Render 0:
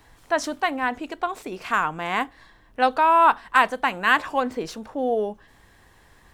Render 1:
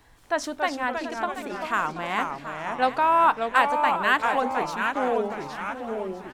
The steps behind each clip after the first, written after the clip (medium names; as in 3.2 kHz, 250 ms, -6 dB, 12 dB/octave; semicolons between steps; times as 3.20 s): on a send: feedback delay 733 ms, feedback 42%, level -12 dB; on the sum: ever faster or slower copies 242 ms, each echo -2 st, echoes 2, each echo -6 dB; trim -3 dB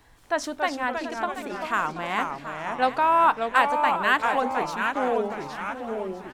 no audible change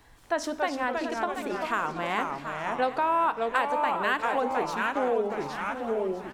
reverberation RT60 0.80 s, pre-delay 9 ms, DRR 16 dB; dynamic bell 430 Hz, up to +6 dB, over -37 dBFS, Q 1.5; compression 2.5:1, threshold -25 dBFS, peak gain reduction 8.5 dB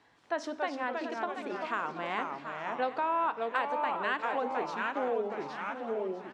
band-pass 180–4900 Hz; trim -5 dB